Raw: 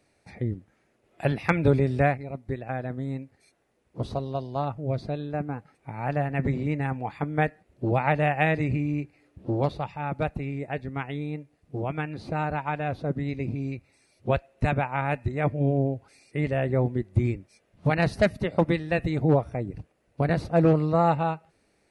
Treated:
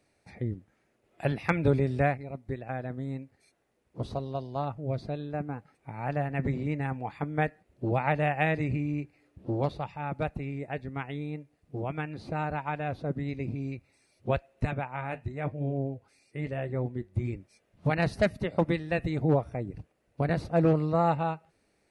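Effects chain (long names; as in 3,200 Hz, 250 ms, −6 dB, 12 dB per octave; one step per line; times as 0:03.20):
0:14.65–0:17.33: flanger 1 Hz, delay 5.6 ms, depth 5 ms, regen −64%
level −3.5 dB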